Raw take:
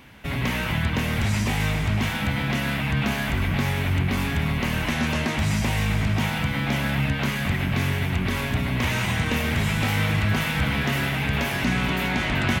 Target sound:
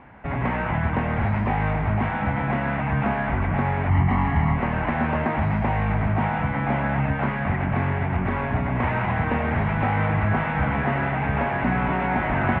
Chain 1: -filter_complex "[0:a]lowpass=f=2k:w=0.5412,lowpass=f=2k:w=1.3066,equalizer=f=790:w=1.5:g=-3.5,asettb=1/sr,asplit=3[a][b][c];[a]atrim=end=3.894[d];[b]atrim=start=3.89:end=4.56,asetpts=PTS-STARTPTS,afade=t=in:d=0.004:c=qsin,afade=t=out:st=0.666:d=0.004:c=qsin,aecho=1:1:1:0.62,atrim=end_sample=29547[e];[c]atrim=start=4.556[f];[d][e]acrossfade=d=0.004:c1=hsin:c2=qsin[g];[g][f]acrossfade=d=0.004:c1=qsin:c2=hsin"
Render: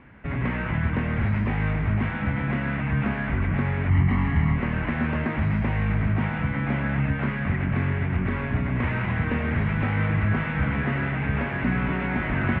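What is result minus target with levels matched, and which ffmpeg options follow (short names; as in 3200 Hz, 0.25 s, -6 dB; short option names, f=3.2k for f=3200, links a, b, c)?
1000 Hz band -7.0 dB
-filter_complex "[0:a]lowpass=f=2k:w=0.5412,lowpass=f=2k:w=1.3066,equalizer=f=790:w=1.5:g=8.5,asettb=1/sr,asplit=3[a][b][c];[a]atrim=end=3.894[d];[b]atrim=start=3.89:end=4.56,asetpts=PTS-STARTPTS,afade=t=in:d=0.004:c=qsin,afade=t=out:st=0.666:d=0.004:c=qsin,aecho=1:1:1:0.62,atrim=end_sample=29547[e];[c]atrim=start=4.556[f];[d][e]acrossfade=d=0.004:c1=hsin:c2=qsin[g];[g][f]acrossfade=d=0.004:c1=qsin:c2=hsin"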